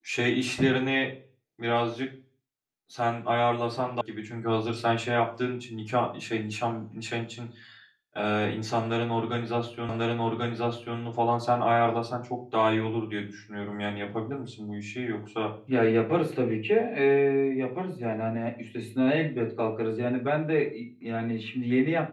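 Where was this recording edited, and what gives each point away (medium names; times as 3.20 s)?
4.01 s: sound stops dead
9.89 s: repeat of the last 1.09 s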